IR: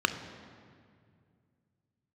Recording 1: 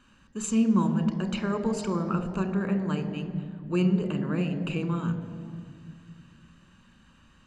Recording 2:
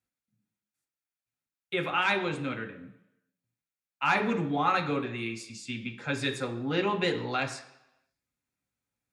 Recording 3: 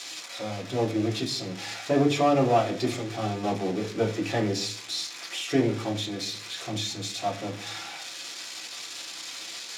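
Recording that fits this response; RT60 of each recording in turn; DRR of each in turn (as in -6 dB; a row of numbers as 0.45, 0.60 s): 1; 2.2 s, 0.85 s, not exponential; 8.5, 3.5, -2.0 dB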